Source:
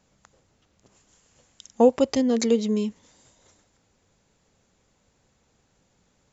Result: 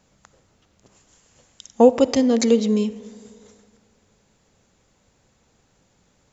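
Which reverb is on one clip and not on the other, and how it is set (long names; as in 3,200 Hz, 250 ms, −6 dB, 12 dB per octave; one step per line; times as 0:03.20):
comb and all-pass reverb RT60 2 s, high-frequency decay 0.4×, pre-delay 15 ms, DRR 16 dB
level +4 dB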